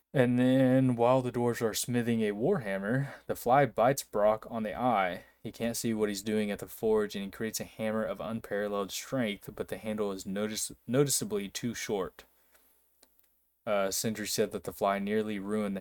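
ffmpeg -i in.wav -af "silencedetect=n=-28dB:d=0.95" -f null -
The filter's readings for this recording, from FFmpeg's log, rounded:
silence_start: 12.05
silence_end: 13.68 | silence_duration: 1.63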